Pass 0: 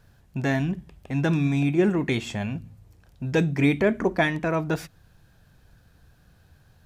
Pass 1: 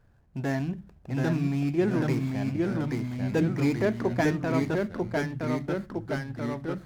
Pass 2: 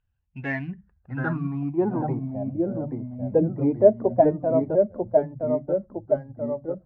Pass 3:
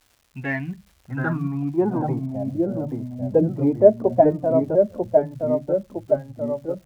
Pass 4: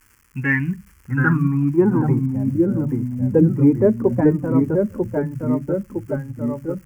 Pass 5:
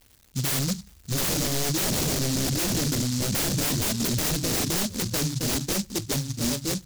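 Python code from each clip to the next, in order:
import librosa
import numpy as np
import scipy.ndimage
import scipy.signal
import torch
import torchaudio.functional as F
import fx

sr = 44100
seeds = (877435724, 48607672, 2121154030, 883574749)

y1 = scipy.signal.medfilt(x, 15)
y1 = fx.hum_notches(y1, sr, base_hz=50, count=4)
y1 = fx.echo_pitch(y1, sr, ms=704, semitones=-1, count=3, db_per_echo=-3.0)
y1 = y1 * librosa.db_to_amplitude(-4.0)
y2 = fx.bin_expand(y1, sr, power=1.5)
y2 = fx.low_shelf(y2, sr, hz=84.0, db=-6.5)
y2 = fx.filter_sweep_lowpass(y2, sr, from_hz=2800.0, to_hz=610.0, start_s=0.2, end_s=2.39, q=5.8)
y2 = y2 * librosa.db_to_amplitude(2.5)
y3 = fx.dmg_crackle(y2, sr, seeds[0], per_s=360.0, level_db=-48.0)
y3 = y3 * librosa.db_to_amplitude(2.5)
y4 = fx.fixed_phaser(y3, sr, hz=1600.0, stages=4)
y4 = y4 * librosa.db_to_amplitude(8.5)
y5 = 10.0 ** (-20.5 / 20.0) * (np.abs((y4 / 10.0 ** (-20.5 / 20.0) + 3.0) % 4.0 - 2.0) - 1.0)
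y5 = fx.noise_mod_delay(y5, sr, seeds[1], noise_hz=5400.0, depth_ms=0.33)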